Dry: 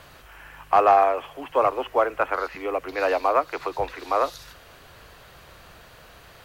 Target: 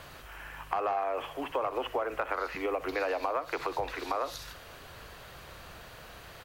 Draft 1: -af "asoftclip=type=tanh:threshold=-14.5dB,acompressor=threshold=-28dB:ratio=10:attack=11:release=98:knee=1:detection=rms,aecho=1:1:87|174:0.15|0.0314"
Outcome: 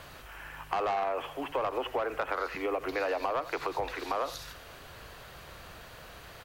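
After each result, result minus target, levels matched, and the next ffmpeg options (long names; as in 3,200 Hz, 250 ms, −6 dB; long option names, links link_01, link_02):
soft clipping: distortion +15 dB; echo 25 ms late
-af "asoftclip=type=tanh:threshold=-4.5dB,acompressor=threshold=-28dB:ratio=10:attack=11:release=98:knee=1:detection=rms,aecho=1:1:87|174:0.15|0.0314"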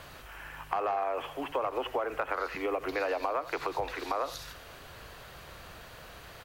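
echo 25 ms late
-af "asoftclip=type=tanh:threshold=-4.5dB,acompressor=threshold=-28dB:ratio=10:attack=11:release=98:knee=1:detection=rms,aecho=1:1:62|124:0.15|0.0314"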